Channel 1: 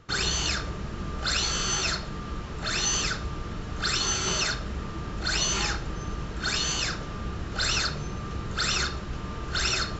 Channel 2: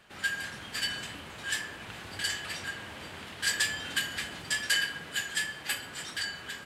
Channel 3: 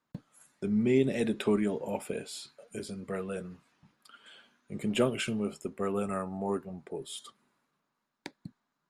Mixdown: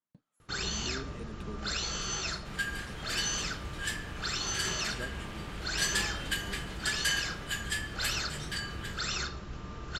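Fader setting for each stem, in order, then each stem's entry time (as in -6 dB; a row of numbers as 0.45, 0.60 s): -7.5, -3.0, -17.5 dB; 0.40, 2.35, 0.00 s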